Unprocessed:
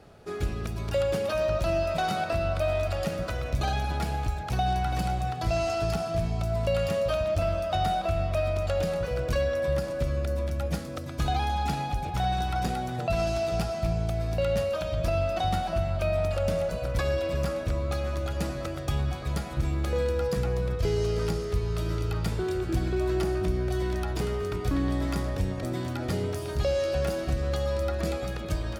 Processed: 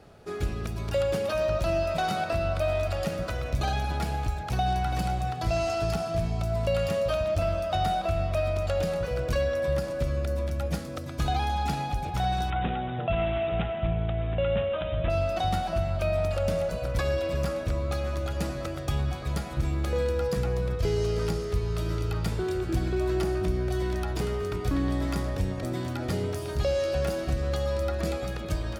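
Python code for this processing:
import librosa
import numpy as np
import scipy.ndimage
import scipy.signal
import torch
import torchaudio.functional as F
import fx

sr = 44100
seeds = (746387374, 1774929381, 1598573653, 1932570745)

y = fx.resample_bad(x, sr, factor=6, down='none', up='filtered', at=(12.5, 15.1))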